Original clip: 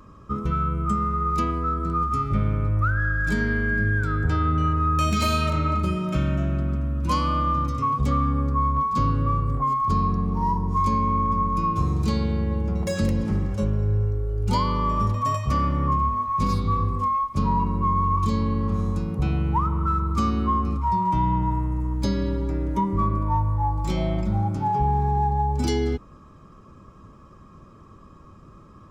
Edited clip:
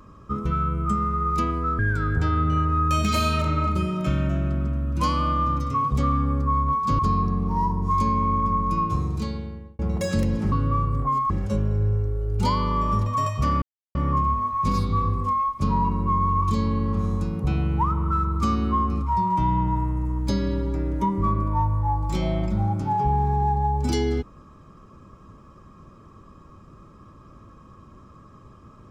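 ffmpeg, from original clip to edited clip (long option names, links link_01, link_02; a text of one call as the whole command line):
ffmpeg -i in.wav -filter_complex "[0:a]asplit=7[link_01][link_02][link_03][link_04][link_05][link_06][link_07];[link_01]atrim=end=1.792[link_08];[link_02]atrim=start=3.868:end=9.072[link_09];[link_03]atrim=start=9.848:end=12.65,asetpts=PTS-STARTPTS,afade=type=out:start_time=1.812:duration=0.99[link_10];[link_04]atrim=start=12.65:end=13.382,asetpts=PTS-STARTPTS,afade=type=in:duration=0.004:curve=hsin[link_11];[link_05]atrim=start=9.068:end=9.852[link_12];[link_06]atrim=start=13.378:end=15.7,asetpts=PTS-STARTPTS,afade=type=out:start_time=2.318:duration=0.004:curve=hsin,apad=pad_dur=0.33[link_13];[link_07]atrim=start=15.7,asetpts=PTS-STARTPTS,afade=type=in:duration=0.004:curve=hsin[link_14];[link_08][link_09]acrossfade=duration=0.004:curve1=hsin:curve2=hsin[link_15];[link_10][link_11]concat=n=2:v=0:a=1[link_16];[link_15][link_16]acrossfade=duration=0.004:curve1=hsin:curve2=hsin[link_17];[link_17][link_12]acrossfade=duration=0.004:curve1=hsin:curve2=hsin[link_18];[link_13][link_14]concat=n=2:v=0:a=1[link_19];[link_18][link_19]acrossfade=duration=0.004:curve1=hsin:curve2=hsin" out.wav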